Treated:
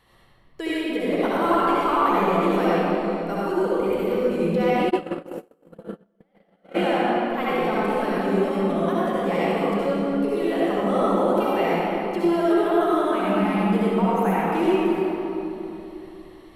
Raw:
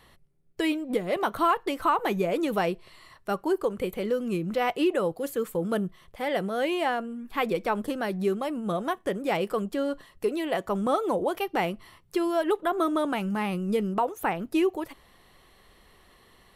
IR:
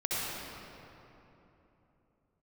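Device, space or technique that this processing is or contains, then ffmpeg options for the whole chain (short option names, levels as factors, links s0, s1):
swimming-pool hall: -filter_complex "[1:a]atrim=start_sample=2205[s0];[0:a][s0]afir=irnorm=-1:irlink=0,highshelf=f=5500:g=-3.5,asplit=3[s1][s2][s3];[s1]afade=t=out:st=4.89:d=0.02[s4];[s2]agate=range=0.00708:threshold=0.2:ratio=16:detection=peak,afade=t=in:st=4.89:d=0.02,afade=t=out:st=6.74:d=0.02[s5];[s3]afade=t=in:st=6.74:d=0.02[s6];[s4][s5][s6]amix=inputs=3:normalize=0,volume=0.708"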